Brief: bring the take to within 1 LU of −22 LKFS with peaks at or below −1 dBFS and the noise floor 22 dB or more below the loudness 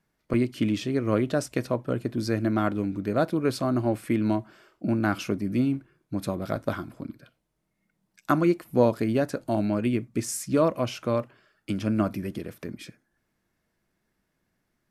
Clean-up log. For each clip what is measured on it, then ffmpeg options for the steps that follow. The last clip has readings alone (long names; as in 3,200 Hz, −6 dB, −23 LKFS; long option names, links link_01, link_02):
integrated loudness −27.0 LKFS; sample peak −7.0 dBFS; target loudness −22.0 LKFS
→ -af "volume=5dB"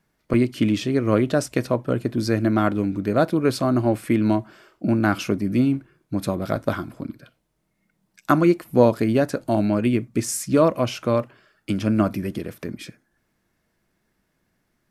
integrated loudness −22.0 LKFS; sample peak −2.0 dBFS; background noise floor −72 dBFS